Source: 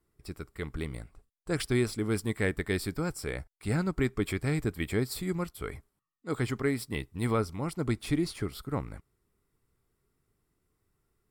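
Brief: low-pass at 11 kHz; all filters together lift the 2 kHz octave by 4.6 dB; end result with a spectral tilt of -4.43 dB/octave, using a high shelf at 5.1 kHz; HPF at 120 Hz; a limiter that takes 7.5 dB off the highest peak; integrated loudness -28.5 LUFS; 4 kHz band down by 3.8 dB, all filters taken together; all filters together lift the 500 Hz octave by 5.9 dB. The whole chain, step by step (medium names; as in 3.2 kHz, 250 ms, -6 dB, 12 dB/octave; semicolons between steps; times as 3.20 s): high-pass 120 Hz; low-pass 11 kHz; peaking EQ 500 Hz +7.5 dB; peaking EQ 2 kHz +6.5 dB; peaking EQ 4 kHz -5 dB; treble shelf 5.1 kHz -4 dB; trim +3 dB; peak limiter -14.5 dBFS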